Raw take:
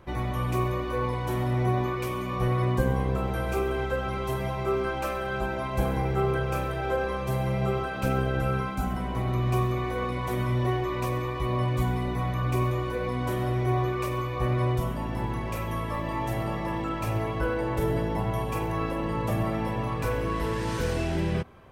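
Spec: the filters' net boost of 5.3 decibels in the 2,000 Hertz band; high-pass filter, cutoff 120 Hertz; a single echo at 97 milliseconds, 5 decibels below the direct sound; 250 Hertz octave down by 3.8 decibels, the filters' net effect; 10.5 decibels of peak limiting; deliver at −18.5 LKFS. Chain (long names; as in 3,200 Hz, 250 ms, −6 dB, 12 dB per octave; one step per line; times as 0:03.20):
high-pass filter 120 Hz
parametric band 250 Hz −5.5 dB
parametric band 2,000 Hz +7 dB
brickwall limiter −24.5 dBFS
single-tap delay 97 ms −5 dB
level +12.5 dB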